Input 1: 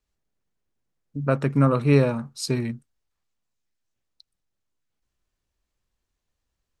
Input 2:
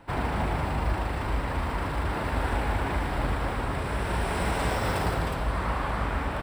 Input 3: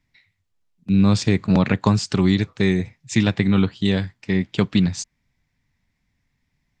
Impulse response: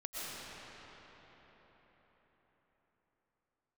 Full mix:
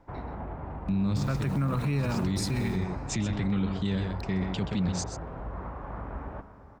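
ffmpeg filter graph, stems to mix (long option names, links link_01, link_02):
-filter_complex "[0:a]equalizer=frequency=460:width=0.75:gain=-12,acrossover=split=490[link_01][link_02];[link_02]acompressor=threshold=-31dB:ratio=6[link_03];[link_01][link_03]amix=inputs=2:normalize=0,acrusher=bits=8:mix=0:aa=0.000001,volume=2dB,asplit=3[link_04][link_05][link_06];[link_05]volume=-19dB[link_07];[1:a]lowpass=1100,alimiter=limit=-22dB:level=0:latency=1:release=227,volume=-7dB,asplit=2[link_08][link_09];[link_09]volume=-12.5dB[link_10];[2:a]lowshelf=frequency=170:gain=8,acompressor=threshold=-23dB:ratio=2,volume=-2.5dB,asplit=2[link_11][link_12];[link_12]volume=-9.5dB[link_13];[link_06]apad=whole_len=299893[link_14];[link_11][link_14]sidechaincompress=threshold=-34dB:ratio=8:attack=16:release=203[link_15];[3:a]atrim=start_sample=2205[link_16];[link_07][link_10]amix=inputs=2:normalize=0[link_17];[link_17][link_16]afir=irnorm=-1:irlink=0[link_18];[link_13]aecho=0:1:128:1[link_19];[link_04][link_08][link_15][link_18][link_19]amix=inputs=5:normalize=0,alimiter=limit=-20.5dB:level=0:latency=1:release=16"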